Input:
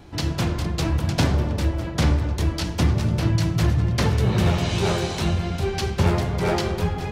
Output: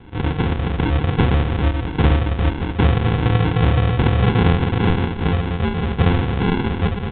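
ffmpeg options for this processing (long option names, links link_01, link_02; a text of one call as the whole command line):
ffmpeg -i in.wav -af "aresample=11025,acrusher=samples=18:mix=1:aa=0.000001,aresample=44100,aresample=8000,aresample=44100,volume=4dB" out.wav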